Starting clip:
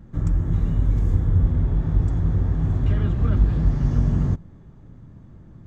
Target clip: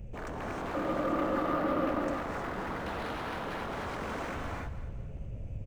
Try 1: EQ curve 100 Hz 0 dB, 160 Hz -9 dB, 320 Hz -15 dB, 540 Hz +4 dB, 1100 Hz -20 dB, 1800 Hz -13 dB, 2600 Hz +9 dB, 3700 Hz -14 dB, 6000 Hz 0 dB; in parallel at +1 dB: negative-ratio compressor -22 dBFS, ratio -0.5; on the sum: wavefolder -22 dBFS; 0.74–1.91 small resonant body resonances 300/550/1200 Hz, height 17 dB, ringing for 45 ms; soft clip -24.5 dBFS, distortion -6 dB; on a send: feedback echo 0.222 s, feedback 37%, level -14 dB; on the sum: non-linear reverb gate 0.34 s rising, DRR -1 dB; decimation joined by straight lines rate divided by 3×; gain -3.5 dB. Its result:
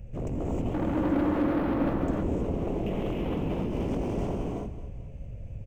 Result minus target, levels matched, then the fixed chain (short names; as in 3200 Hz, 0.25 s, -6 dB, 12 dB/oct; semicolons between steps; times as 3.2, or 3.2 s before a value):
wavefolder: distortion -13 dB
EQ curve 100 Hz 0 dB, 160 Hz -9 dB, 320 Hz -15 dB, 540 Hz +4 dB, 1100 Hz -20 dB, 1800 Hz -13 dB, 2600 Hz +9 dB, 3700 Hz -14 dB, 6000 Hz 0 dB; in parallel at +1 dB: negative-ratio compressor -22 dBFS, ratio -0.5; on the sum: wavefolder -31.5 dBFS; 0.74–1.91 small resonant body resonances 300/550/1200 Hz, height 17 dB, ringing for 45 ms; soft clip -24.5 dBFS, distortion -14 dB; on a send: feedback echo 0.222 s, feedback 37%, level -14 dB; on the sum: non-linear reverb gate 0.34 s rising, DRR -1 dB; decimation joined by straight lines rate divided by 3×; gain -3.5 dB